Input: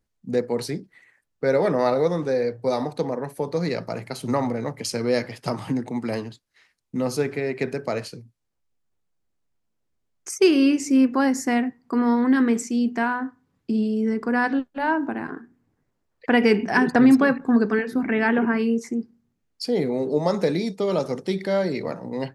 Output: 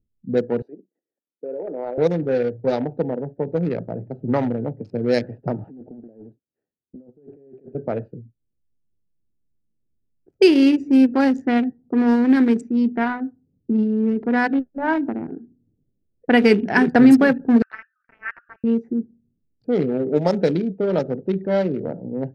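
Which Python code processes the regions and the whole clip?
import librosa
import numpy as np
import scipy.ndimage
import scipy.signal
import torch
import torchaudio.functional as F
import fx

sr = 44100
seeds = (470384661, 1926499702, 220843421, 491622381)

y = fx.chain(x, sr, fx.high_shelf(hz=3100.0, db=5.0),
    fx.level_steps(step_db=13),
    fx.bessel_highpass(hz=420.0, order=4), at=(0.62, 1.98))
y = fx.chain(y, sr, fx.highpass(hz=1200.0, slope=6),
    fx.over_compress(threshold_db=-42.0, ratio=-1.0),
    fx.doppler_dist(depth_ms=0.58), at=(5.64, 7.75))
y = fx.chain(y, sr, fx.brickwall_bandpass(low_hz=1100.0, high_hz=3000.0),
    fx.quant_float(bits=8), at=(17.62, 18.64))
y = fx.wiener(y, sr, points=41)
y = fx.env_lowpass(y, sr, base_hz=360.0, full_db=-15.5)
y = fx.peak_eq(y, sr, hz=1100.0, db=-7.5, octaves=0.33)
y = y * 10.0 ** (4.0 / 20.0)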